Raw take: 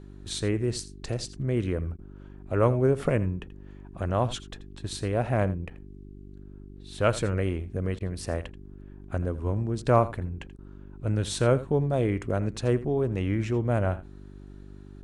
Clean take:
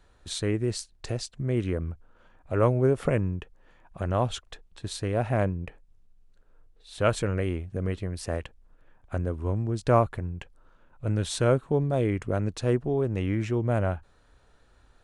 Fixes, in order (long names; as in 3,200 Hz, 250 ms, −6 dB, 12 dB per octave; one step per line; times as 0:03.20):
hum removal 49.1 Hz, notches 8
repair the gap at 0:05.70, 7 ms
repair the gap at 0:01.97/0:07.99/0:10.57, 14 ms
echo removal 83 ms −16.5 dB